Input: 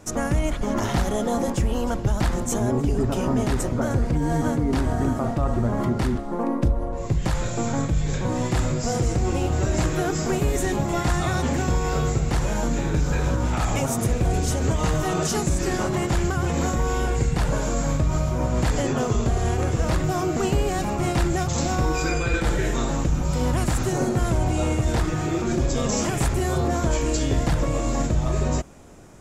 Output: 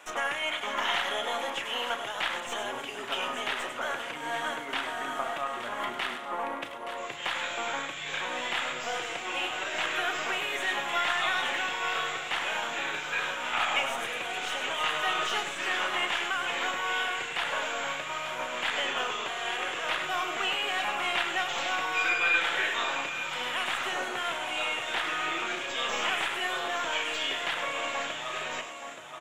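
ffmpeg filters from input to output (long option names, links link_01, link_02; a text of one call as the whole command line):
ffmpeg -i in.wav -filter_complex "[0:a]aecho=1:1:101|873:0.299|0.266,acrossover=split=1700[link_01][link_02];[link_01]alimiter=limit=-18.5dB:level=0:latency=1:release=225[link_03];[link_02]asoftclip=type=tanh:threshold=-25dB[link_04];[link_03][link_04]amix=inputs=2:normalize=0,highpass=1000,aeval=exprs='0.188*(cos(1*acos(clip(val(0)/0.188,-1,1)))-cos(1*PI/2))+0.00422*(cos(6*acos(clip(val(0)/0.188,-1,1)))-cos(6*PI/2))+0.00668*(cos(8*acos(clip(val(0)/0.188,-1,1)))-cos(8*PI/2))':channel_layout=same,acrossover=split=5100[link_05][link_06];[link_06]acompressor=threshold=-47dB:ratio=4:attack=1:release=60[link_07];[link_05][link_07]amix=inputs=2:normalize=0,highshelf=frequency=3900:width_type=q:width=3:gain=-6.5,asplit=2[link_08][link_09];[link_09]adelay=33,volume=-11.5dB[link_10];[link_08][link_10]amix=inputs=2:normalize=0,volume=5dB" out.wav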